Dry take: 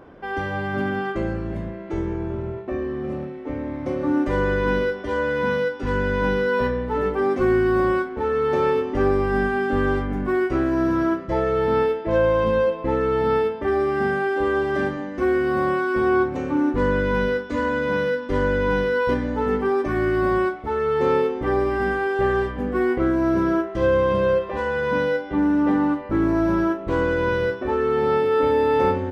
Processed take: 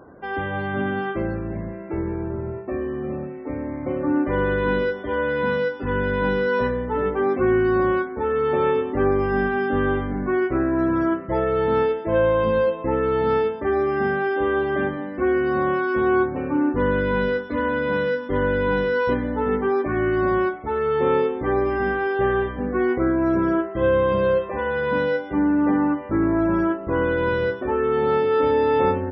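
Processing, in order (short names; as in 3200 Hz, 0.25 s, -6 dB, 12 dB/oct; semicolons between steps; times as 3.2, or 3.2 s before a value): HPF 52 Hz; loudest bins only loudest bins 64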